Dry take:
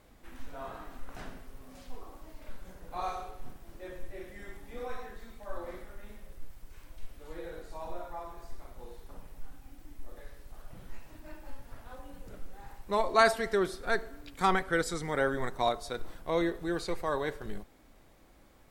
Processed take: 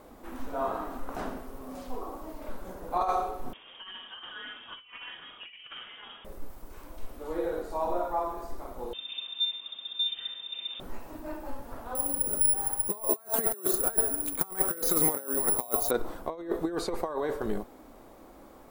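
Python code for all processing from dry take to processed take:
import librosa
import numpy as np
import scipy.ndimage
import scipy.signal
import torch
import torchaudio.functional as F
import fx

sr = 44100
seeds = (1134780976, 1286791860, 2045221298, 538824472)

y = fx.chain(x, sr, fx.highpass(hz=190.0, slope=12),
    fx.over_compress(threshold_db=-46.0, ratio=-0.5),
    fx.freq_invert(carrier_hz=3500), at=(3.53, 6.25))
y = fx.chain(y, sr, fx.peak_eq(hz=940.0, db=12.0, octaves=0.36),
    fx.freq_invert(carrier_hz=3600), at=(8.93, 10.8))
y = fx.chain(y, sr, fx.lowpass(hz=11000.0, slope=12),
    fx.resample_bad(factor=4, down='filtered', up='zero_stuff'), at=(11.95, 15.91))
y = fx.band_shelf(y, sr, hz=530.0, db=10.0, octaves=2.9)
y = fx.over_compress(y, sr, threshold_db=-26.0, ratio=-0.5)
y = fx.high_shelf(y, sr, hz=11000.0, db=8.5)
y = y * 10.0 ** (-3.0 / 20.0)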